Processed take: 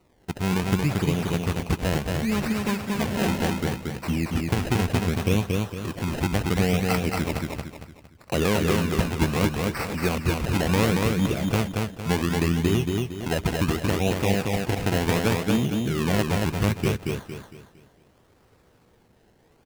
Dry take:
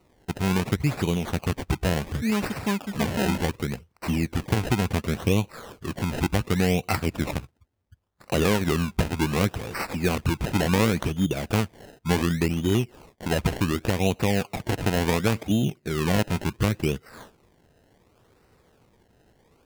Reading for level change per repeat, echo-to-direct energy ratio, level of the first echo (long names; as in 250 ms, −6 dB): −8.5 dB, −2.5 dB, −3.0 dB